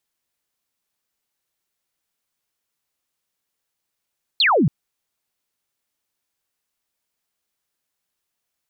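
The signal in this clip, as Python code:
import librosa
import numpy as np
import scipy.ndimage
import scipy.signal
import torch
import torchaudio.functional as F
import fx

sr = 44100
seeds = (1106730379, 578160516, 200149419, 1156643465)

y = fx.laser_zap(sr, level_db=-13.0, start_hz=4500.0, end_hz=120.0, length_s=0.28, wave='sine')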